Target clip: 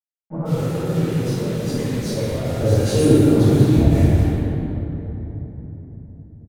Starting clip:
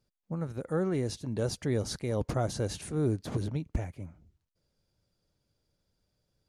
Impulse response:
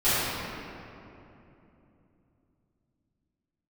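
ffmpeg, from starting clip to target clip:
-filter_complex "[0:a]asettb=1/sr,asplit=3[link_01][link_02][link_03];[link_01]atrim=end=0.564[link_04];[link_02]atrim=start=0.56:end=2.6,asetpts=PTS-STARTPTS,afade=type=in:duration=0.004:curve=qsin,afade=type=out:start_time=2.036:duration=0.004:curve=qsin,acompressor=threshold=-37dB:ratio=16[link_05];[link_03]atrim=start=2.596[link_06];[link_04][link_05]acrossfade=duration=0.004:curve1=hsin:curve2=qsin[link_07];[link_07][link_06]acrossfade=duration=0.004:curve1=qsin:curve2=hsin,acrusher=bits=7:mix=0:aa=0.000001,flanger=delay=3.3:depth=8.8:regen=50:speed=0.64:shape=sinusoidal,acrossover=split=1300[link_08][link_09];[link_09]adelay=150[link_10];[link_08][link_10]amix=inputs=2:normalize=0[link_11];[1:a]atrim=start_sample=2205,asetrate=33516,aresample=44100[link_12];[link_11][link_12]afir=irnorm=-1:irlink=0,volume=1.5dB"

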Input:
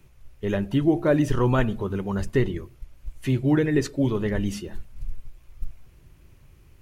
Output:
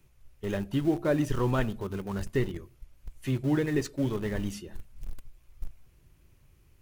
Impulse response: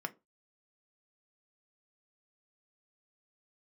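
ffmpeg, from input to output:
-filter_complex "[0:a]asplit=2[link_01][link_02];[link_02]aeval=exprs='val(0)*gte(abs(val(0)),0.0631)':channel_layout=same,volume=-11dB[link_03];[link_01][link_03]amix=inputs=2:normalize=0,highshelf=frequency=4700:gain=4.5,volume=-8dB"

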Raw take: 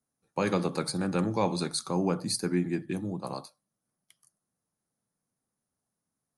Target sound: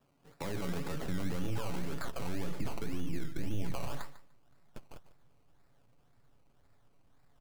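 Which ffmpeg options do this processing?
ffmpeg -i in.wav -filter_complex "[0:a]aeval=exprs='if(lt(val(0),0),0.708*val(0),val(0))':channel_layout=same,lowpass=frequency=8400:width=0.5412,lowpass=frequency=8400:width=1.3066,equalizer=frequency=3200:width=4:gain=-10.5,aecho=1:1:7.1:0.4,asubboost=boost=11:cutoff=59,acompressor=threshold=-42dB:ratio=4,alimiter=level_in=16.5dB:limit=-24dB:level=0:latency=1:release=11,volume=-16.5dB,acrossover=split=180[link_01][link_02];[link_02]acompressor=threshold=-59dB:ratio=2[link_03];[link_01][link_03]amix=inputs=2:normalize=0,atempo=0.86,acrusher=samples=20:mix=1:aa=0.000001:lfo=1:lforange=12:lforate=1.9,aecho=1:1:148|296:0.178|0.0302,volume=16.5dB" out.wav

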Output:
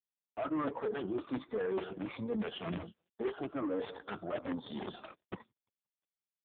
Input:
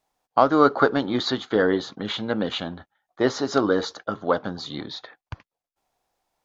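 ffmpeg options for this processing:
ffmpeg -i in.wav -af "afftfilt=real='re*pow(10,21/40*sin(2*PI*(1*log(max(b,1)*sr/1024/100)/log(2)-(-1.3)*(pts-256)/sr)))':imag='im*pow(10,21/40*sin(2*PI*(1*log(max(b,1)*sr/1024/100)/log(2)-(-1.3)*(pts-256)/sr)))':win_size=1024:overlap=0.75,asoftclip=type=tanh:threshold=-15dB,aecho=1:1:175|350|525|700:0.0631|0.0347|0.0191|0.0105,agate=range=-38dB:threshold=-43dB:ratio=16:detection=peak,areverse,acompressor=threshold=-34dB:ratio=8,areverse,aeval=exprs='(mod(28.2*val(0)+1,2)-1)/28.2':channel_layout=same,highshelf=frequency=2100:gain=-6.5,volume=1.5dB" -ar 8000 -c:a libopencore_amrnb -b:a 4750 out.amr

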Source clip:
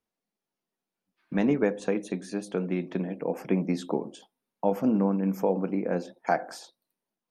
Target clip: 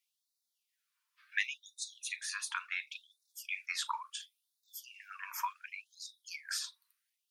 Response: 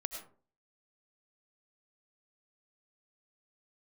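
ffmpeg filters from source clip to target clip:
-filter_complex "[0:a]afreqshift=25[link_01];[1:a]atrim=start_sample=2205,atrim=end_sample=3528,asetrate=83790,aresample=44100[link_02];[link_01][link_02]afir=irnorm=-1:irlink=0,afftfilt=real='re*gte(b*sr/1024,890*pow(3600/890,0.5+0.5*sin(2*PI*0.7*pts/sr)))':imag='im*gte(b*sr/1024,890*pow(3600/890,0.5+0.5*sin(2*PI*0.7*pts/sr)))':win_size=1024:overlap=0.75,volume=14.5dB"

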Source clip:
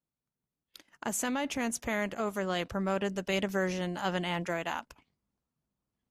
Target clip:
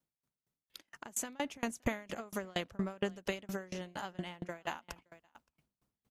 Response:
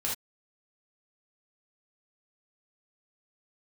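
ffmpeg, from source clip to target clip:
-filter_complex "[0:a]acompressor=threshold=-38dB:ratio=16,asplit=3[link_01][link_02][link_03];[link_01]afade=type=out:start_time=3.71:duration=0.02[link_04];[link_02]agate=range=-20dB:threshold=-42dB:ratio=16:detection=peak,afade=type=in:start_time=3.71:duration=0.02,afade=type=out:start_time=4.67:duration=0.02[link_05];[link_03]afade=type=in:start_time=4.67:duration=0.02[link_06];[link_04][link_05][link_06]amix=inputs=3:normalize=0,asplit=2[link_07][link_08];[link_08]aecho=0:1:570:0.112[link_09];[link_07][link_09]amix=inputs=2:normalize=0,dynaudnorm=framelen=420:gausssize=5:maxgain=5dB,aeval=exprs='val(0)*pow(10,-30*if(lt(mod(4.3*n/s,1),2*abs(4.3)/1000),1-mod(4.3*n/s,1)/(2*abs(4.3)/1000),(mod(4.3*n/s,1)-2*abs(4.3)/1000)/(1-2*abs(4.3)/1000))/20)':channel_layout=same,volume=7dB"

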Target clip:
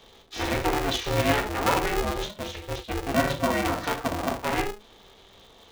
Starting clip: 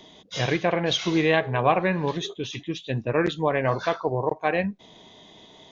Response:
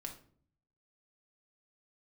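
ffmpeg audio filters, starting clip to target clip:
-filter_complex "[0:a]asettb=1/sr,asplit=3[link_01][link_02][link_03];[link_01]atrim=end=3.134[link_04];[link_02]atrim=start=3.13:end=3.91,asetpts=PTS-STARTPTS,afade=type=in:duration=0.004:curve=qsin,afade=type=out:start_time=0.776:duration=0.004:curve=qsin,aecho=1:1:2.4:0.66,atrim=end_sample=34398[link_05];[link_03]atrim=start=3.906[link_06];[link_04][link_05]acrossfade=duration=0.004:curve1=hsin:curve2=qsin[link_07];[link_07][link_06]acrossfade=duration=0.004:curve1=qsin:curve2=hsin[link_08];[1:a]atrim=start_sample=2205,atrim=end_sample=4410[link_09];[link_08][link_09]afir=irnorm=-1:irlink=0,aeval=exprs='val(0)*sgn(sin(2*PI*210*n/s))':channel_layout=same"

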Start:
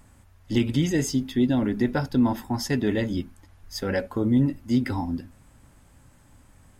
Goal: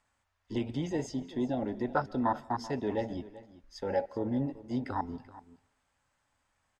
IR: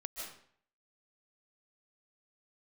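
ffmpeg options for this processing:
-filter_complex "[0:a]afwtdn=0.0447,acrossover=split=580 7700:gain=0.158 1 0.0708[link_01][link_02][link_03];[link_01][link_02][link_03]amix=inputs=3:normalize=0,aecho=1:1:385:0.133,asplit=2[link_04][link_05];[1:a]atrim=start_sample=2205[link_06];[link_05][link_06]afir=irnorm=-1:irlink=0,volume=-19.5dB[link_07];[link_04][link_07]amix=inputs=2:normalize=0,volume=3dB"

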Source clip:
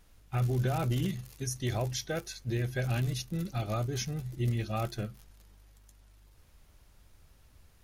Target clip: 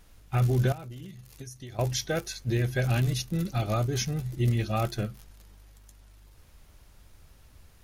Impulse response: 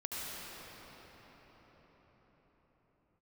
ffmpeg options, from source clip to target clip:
-filter_complex "[0:a]asettb=1/sr,asplit=3[link_01][link_02][link_03];[link_01]atrim=end=0.724[link_04];[link_02]atrim=start=0.72:end=1.79,asetpts=PTS-STARTPTS,afade=type=in:duration=0.004:curve=qsin,afade=type=out:start_time=1.066:duration=0.004:curve=qsin,acompressor=threshold=-45dB:ratio=8[link_05];[link_03]atrim=start=1.786[link_06];[link_04][link_05]acrossfade=duration=0.004:curve1=hsin:curve2=qsin[link_07];[link_07][link_06]acrossfade=duration=0.004:curve1=qsin:curve2=hsin,volume=5dB"

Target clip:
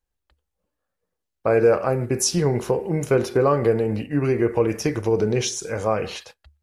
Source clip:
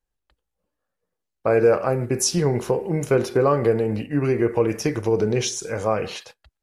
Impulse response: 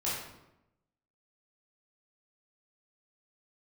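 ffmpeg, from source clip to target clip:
-af "equalizer=frequency=73:width=6.3:gain=10"

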